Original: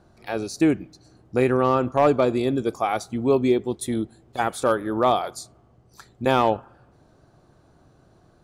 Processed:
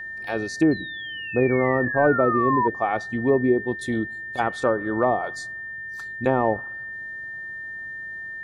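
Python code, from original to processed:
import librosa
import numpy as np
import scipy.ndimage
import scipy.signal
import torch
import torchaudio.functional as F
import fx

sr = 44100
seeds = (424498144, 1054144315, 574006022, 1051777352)

y = fx.spec_paint(x, sr, seeds[0], shape='fall', start_s=0.71, length_s=1.97, low_hz=940.0, high_hz=4200.0, level_db=-17.0)
y = fx.env_lowpass_down(y, sr, base_hz=850.0, full_db=-15.5)
y = y + 10.0 ** (-32.0 / 20.0) * np.sin(2.0 * np.pi * 1800.0 * np.arange(len(y)) / sr)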